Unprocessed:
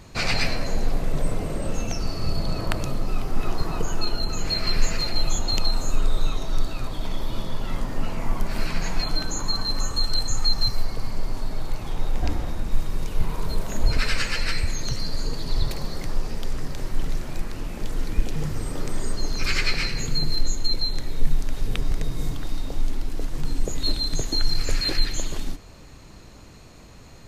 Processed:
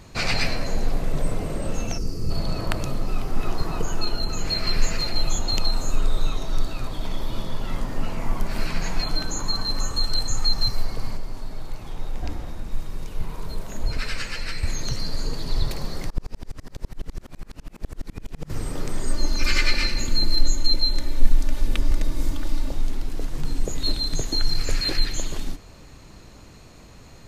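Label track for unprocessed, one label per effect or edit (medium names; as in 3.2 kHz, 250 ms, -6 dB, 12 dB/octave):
1.980000	2.310000	time-frequency box 530–4600 Hz -12 dB
11.170000	14.630000	gain -5 dB
16.100000	18.500000	sawtooth tremolo in dB swelling 12 Hz, depth 34 dB
19.070000	22.720000	comb 3.4 ms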